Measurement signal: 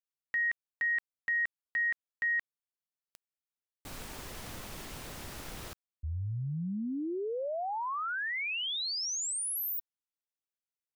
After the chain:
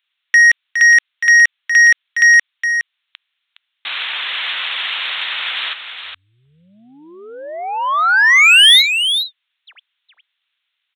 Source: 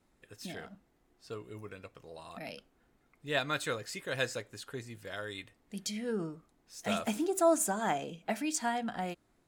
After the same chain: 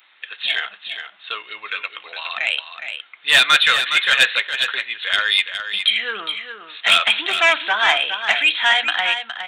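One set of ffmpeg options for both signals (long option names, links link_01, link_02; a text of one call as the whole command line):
ffmpeg -i in.wav -filter_complex "[0:a]asplit=2[link_01][link_02];[link_02]aeval=exprs='0.168*sin(PI/2*2.82*val(0)/0.168)':channel_layout=same,volume=-6dB[link_03];[link_01][link_03]amix=inputs=2:normalize=0,aresample=8000,aresample=44100,highpass=1400,crystalizer=i=9:c=0,asoftclip=type=tanh:threshold=-14dB,asplit=2[link_04][link_05];[link_05]aecho=0:1:414:0.376[link_06];[link_04][link_06]amix=inputs=2:normalize=0,volume=9dB" out.wav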